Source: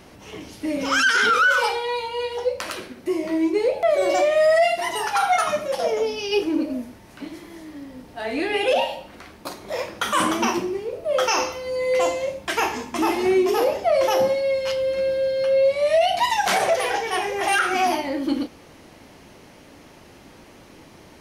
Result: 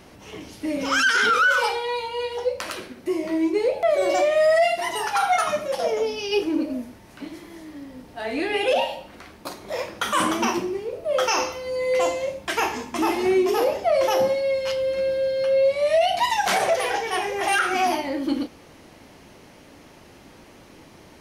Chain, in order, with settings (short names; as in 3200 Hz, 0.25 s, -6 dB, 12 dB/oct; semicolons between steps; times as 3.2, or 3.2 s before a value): overloaded stage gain 10.5 dB; gain -1 dB